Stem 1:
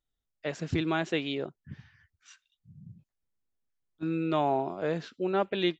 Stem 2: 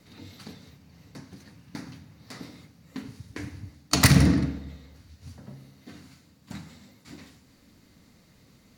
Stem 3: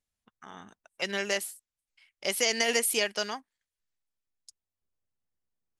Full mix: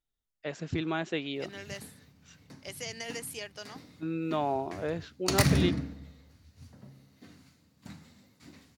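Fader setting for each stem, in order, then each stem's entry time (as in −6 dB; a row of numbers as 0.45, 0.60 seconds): −3.0, −7.0, −13.0 decibels; 0.00, 1.35, 0.40 seconds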